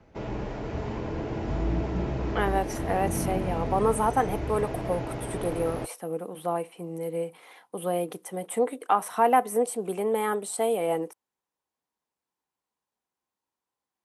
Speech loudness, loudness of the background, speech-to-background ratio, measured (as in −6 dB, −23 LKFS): −28.5 LKFS, −32.5 LKFS, 4.0 dB